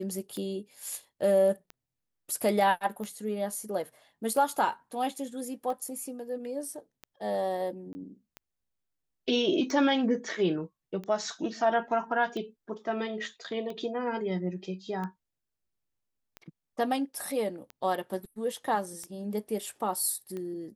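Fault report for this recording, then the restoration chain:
tick 45 rpm -26 dBFS
7.93–7.95 gap 20 ms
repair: de-click; interpolate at 7.93, 20 ms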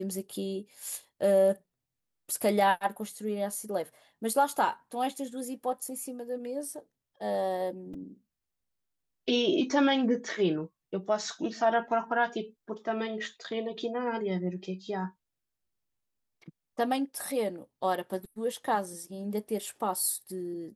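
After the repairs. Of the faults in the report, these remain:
none

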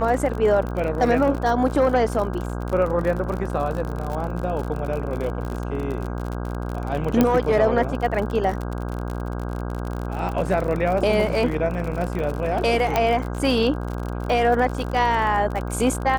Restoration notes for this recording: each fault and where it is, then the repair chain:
buzz 60 Hz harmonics 27 -28 dBFS
crackle 51/s -27 dBFS
7.21 pop -5 dBFS
12.96 pop -6 dBFS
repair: de-click; de-hum 60 Hz, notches 27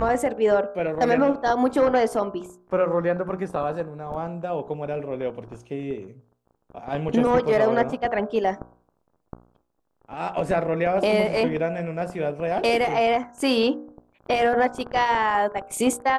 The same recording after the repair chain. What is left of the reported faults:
none

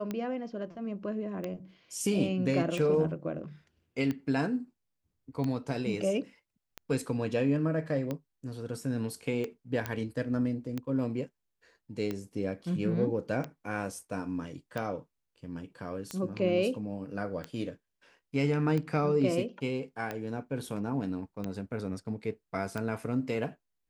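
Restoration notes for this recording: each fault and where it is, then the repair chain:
tick 45 rpm -21 dBFS
9.86 pop -17 dBFS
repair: de-click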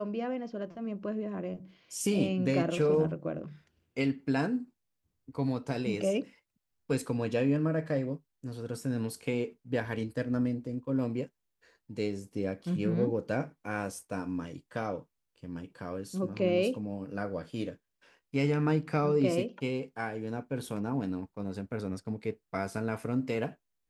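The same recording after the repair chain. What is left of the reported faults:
none

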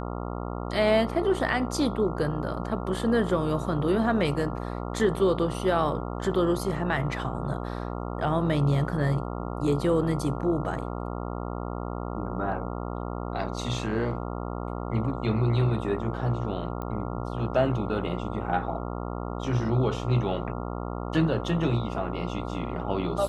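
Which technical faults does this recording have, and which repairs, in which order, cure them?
buzz 60 Hz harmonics 23 -33 dBFS
16.82 pop -22 dBFS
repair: de-click; de-hum 60 Hz, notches 23

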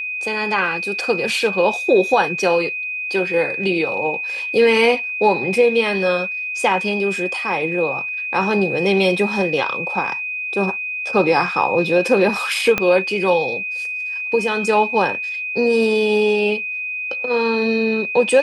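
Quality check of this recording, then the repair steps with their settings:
tone 2500 Hz -23 dBFS
12.78 pop -4 dBFS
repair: de-click; notch 2500 Hz, Q 30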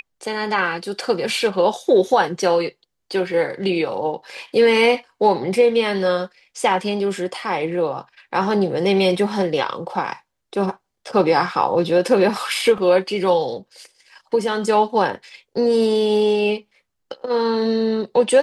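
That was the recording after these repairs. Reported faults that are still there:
12.78 pop

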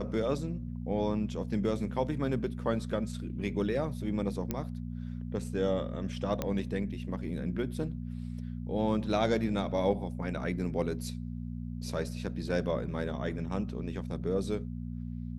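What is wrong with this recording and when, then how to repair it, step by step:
hum 60 Hz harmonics 4 -38 dBFS
4.51 pop -17 dBFS
6.42 pop -17 dBFS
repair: de-click; de-hum 60 Hz, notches 4

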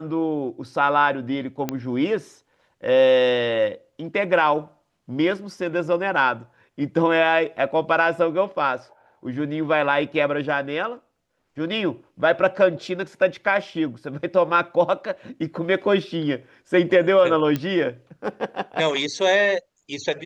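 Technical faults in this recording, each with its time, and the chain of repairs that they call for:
1.69 pop -10 dBFS
17.56 pop -12 dBFS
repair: de-click

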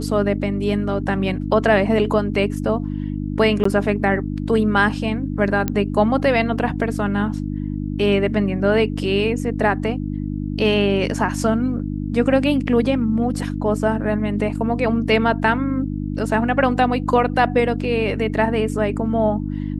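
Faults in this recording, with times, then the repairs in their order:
hum 50 Hz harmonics 6 -25 dBFS
3.64–3.65 gap 14 ms
5.68 pop -8 dBFS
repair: de-click; de-hum 50 Hz, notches 6; interpolate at 3.64, 14 ms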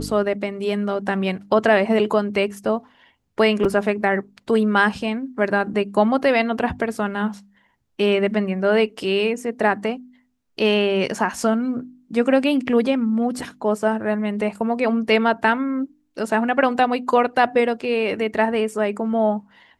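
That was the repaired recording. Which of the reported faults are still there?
none

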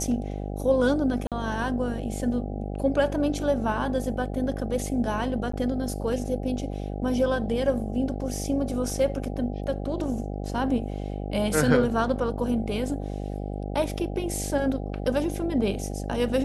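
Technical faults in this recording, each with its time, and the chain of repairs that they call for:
buzz 50 Hz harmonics 16 -32 dBFS
1.27–1.32 gap 47 ms
5.52–5.53 gap 14 ms
8.9 gap 2.3 ms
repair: de-hum 50 Hz, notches 16; interpolate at 1.27, 47 ms; interpolate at 5.52, 14 ms; interpolate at 8.9, 2.3 ms

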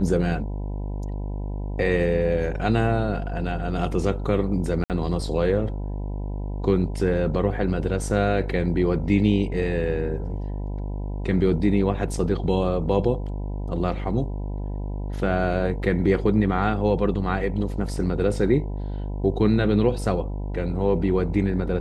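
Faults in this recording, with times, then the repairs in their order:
buzz 50 Hz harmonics 20 -29 dBFS
4.84–4.9 gap 58 ms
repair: de-hum 50 Hz, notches 20; interpolate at 4.84, 58 ms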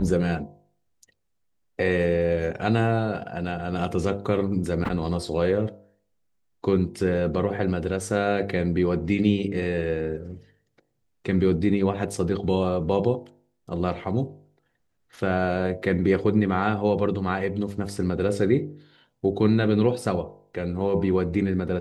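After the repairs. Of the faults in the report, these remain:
none

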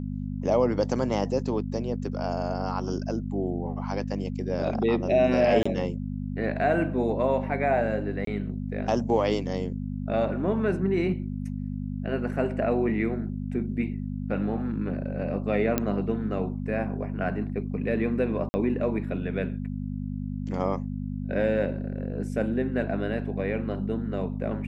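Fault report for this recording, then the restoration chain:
hum 50 Hz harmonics 5 -32 dBFS
5.63–5.66 gap 25 ms
8.25–8.27 gap 23 ms
15.78 pop -10 dBFS
18.49–18.54 gap 50 ms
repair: de-click; de-hum 50 Hz, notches 5; interpolate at 5.63, 25 ms; interpolate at 8.25, 23 ms; interpolate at 18.49, 50 ms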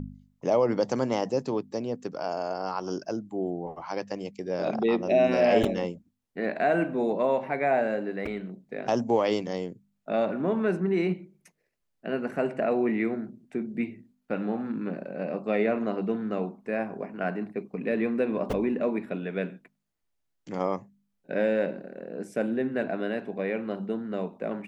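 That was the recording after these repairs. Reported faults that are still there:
none

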